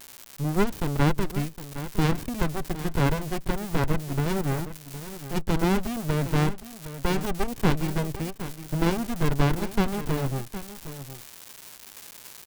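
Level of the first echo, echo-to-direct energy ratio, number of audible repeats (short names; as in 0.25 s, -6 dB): -13.0 dB, -13.0 dB, 1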